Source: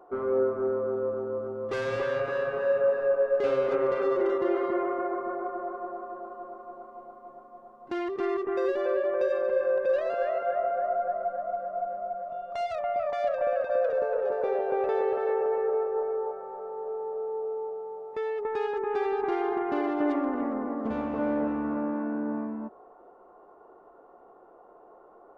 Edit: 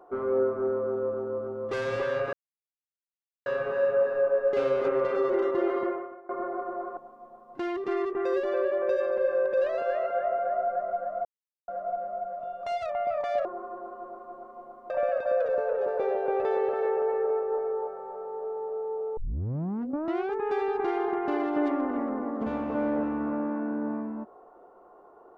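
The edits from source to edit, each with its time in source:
0:02.33: splice in silence 1.13 s
0:04.71–0:05.16: fade out quadratic, to −20.5 dB
0:05.84–0:07.29: move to 0:13.34
0:11.57: splice in silence 0.43 s
0:17.61: tape start 1.19 s

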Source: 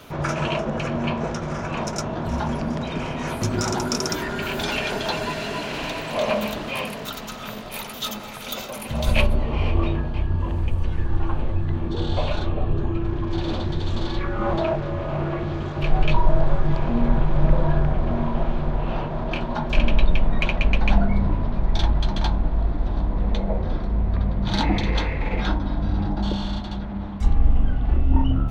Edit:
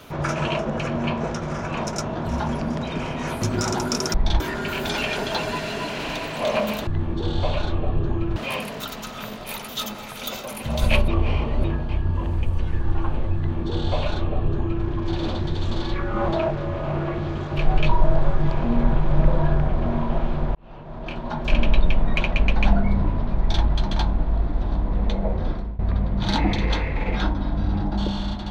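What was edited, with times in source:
0:09.33–0:09.89: reverse
0:11.61–0:13.10: duplicate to 0:06.61
0:18.80–0:19.85: fade in
0:21.63–0:21.89: duplicate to 0:04.14
0:23.77–0:24.04: fade out, to −20.5 dB

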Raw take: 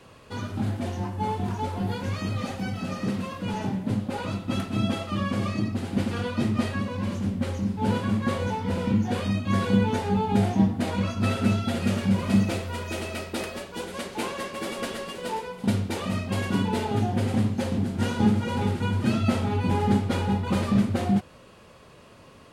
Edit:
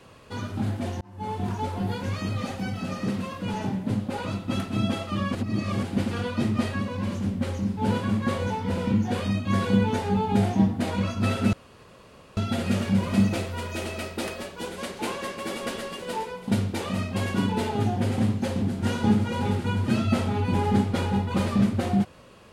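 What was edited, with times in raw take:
0:01.01–0:01.44: fade in
0:05.35–0:05.83: reverse
0:11.53: splice in room tone 0.84 s

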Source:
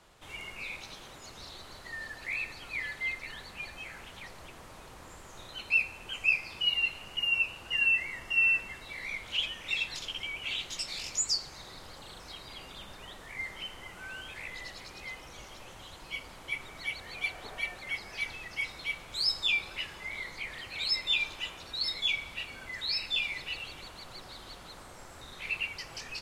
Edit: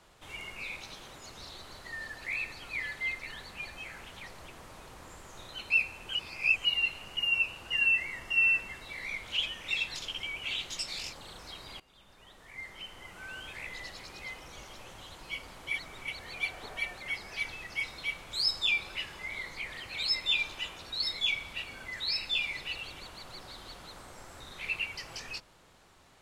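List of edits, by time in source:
0:06.15–0:06.65: reverse
0:11.13–0:11.94: remove
0:12.61–0:14.29: fade in, from −20 dB
0:16.55–0:16.89: reverse

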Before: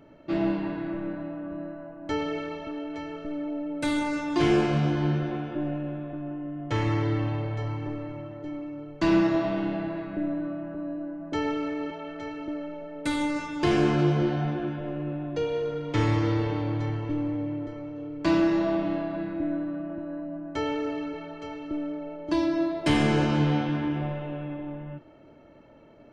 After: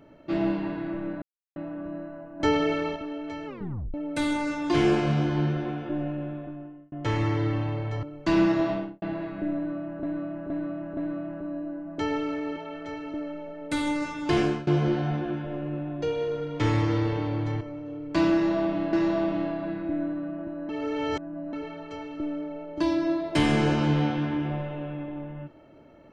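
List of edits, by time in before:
0:01.22: splice in silence 0.34 s
0:02.06–0:02.62: clip gain +6 dB
0:03.13: tape stop 0.47 s
0:06.01–0:06.58: fade out
0:07.69–0:08.78: remove
0:09.44–0:09.77: fade out and dull
0:10.31–0:10.78: repeat, 4 plays
0:13.73–0:14.01: fade out, to −23.5 dB
0:16.95–0:17.71: remove
0:18.44–0:19.03: repeat, 2 plays
0:20.20–0:21.04: reverse

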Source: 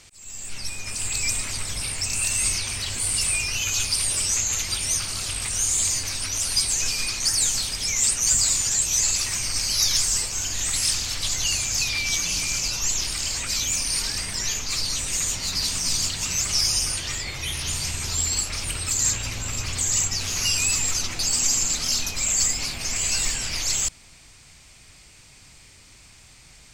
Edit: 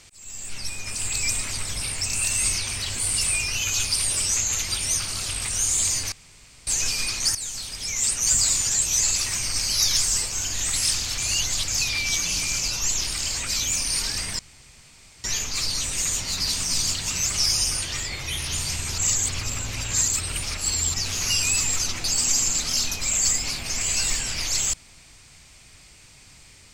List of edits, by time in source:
0:06.12–0:06.67: fill with room tone
0:07.35–0:08.36: fade in, from −12.5 dB
0:11.18–0:11.68: reverse
0:14.39: splice in room tone 0.85 s
0:18.13–0:20.09: reverse

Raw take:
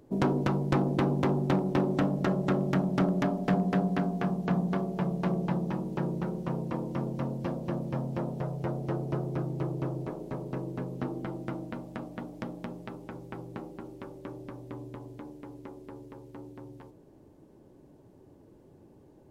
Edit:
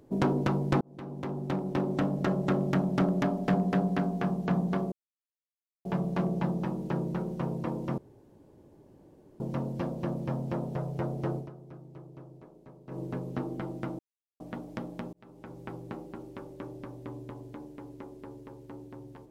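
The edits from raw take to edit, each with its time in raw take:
0:00.81–0:02.73: fade in equal-power
0:04.92: splice in silence 0.93 s
0:07.05: splice in room tone 1.42 s
0:09.01–0:10.65: duck −15.5 dB, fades 0.13 s
0:11.64–0:12.05: silence
0:12.78–0:13.30: fade in

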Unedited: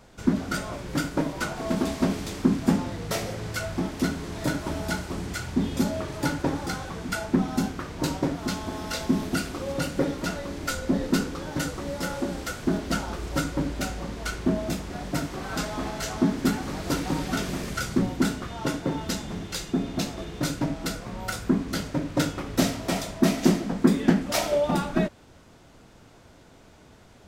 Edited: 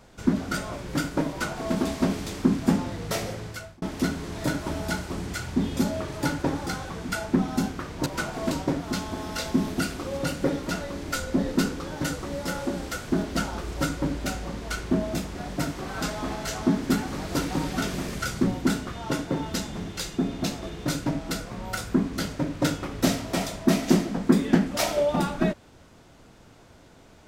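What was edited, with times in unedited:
0:01.29–0:01.74: duplicate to 0:08.06
0:03.29–0:03.82: fade out

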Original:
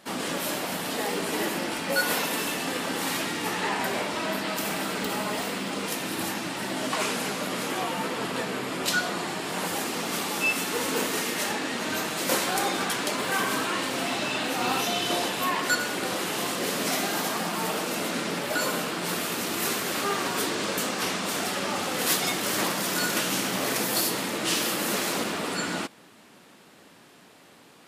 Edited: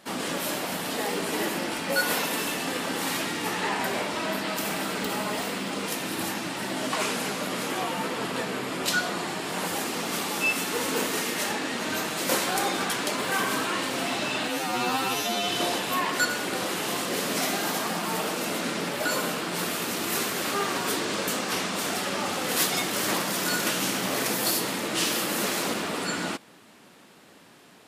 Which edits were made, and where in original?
0:14.48–0:14.98: time-stretch 2×

